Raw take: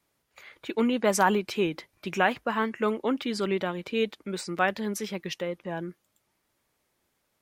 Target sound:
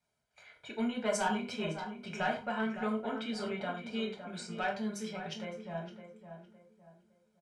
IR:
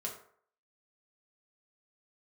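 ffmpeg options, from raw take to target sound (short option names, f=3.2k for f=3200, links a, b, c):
-filter_complex "[0:a]lowpass=f=9.7k:w=0.5412,lowpass=f=9.7k:w=1.3066,aecho=1:1:1.3:0.63,acrossover=split=2000[a][b];[a]asoftclip=type=tanh:threshold=-19dB[c];[c][b]amix=inputs=2:normalize=0,asplit=2[d][e];[e]adelay=561,lowpass=f=1.8k:p=1,volume=-9dB,asplit=2[f][g];[g]adelay=561,lowpass=f=1.8k:p=1,volume=0.35,asplit=2[h][i];[i]adelay=561,lowpass=f=1.8k:p=1,volume=0.35,asplit=2[j][k];[k]adelay=561,lowpass=f=1.8k:p=1,volume=0.35[l];[d][f][h][j][l]amix=inputs=5:normalize=0[m];[1:a]atrim=start_sample=2205,afade=t=out:st=0.16:d=0.01,atrim=end_sample=7497[n];[m][n]afir=irnorm=-1:irlink=0,volume=-8dB"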